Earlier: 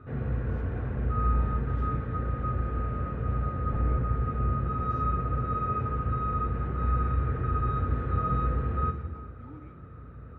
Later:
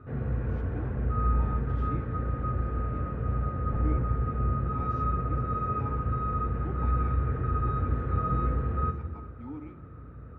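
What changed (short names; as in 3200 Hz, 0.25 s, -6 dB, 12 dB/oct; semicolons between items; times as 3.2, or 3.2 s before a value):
speech +8.0 dB; master: add high shelf 3200 Hz -8.5 dB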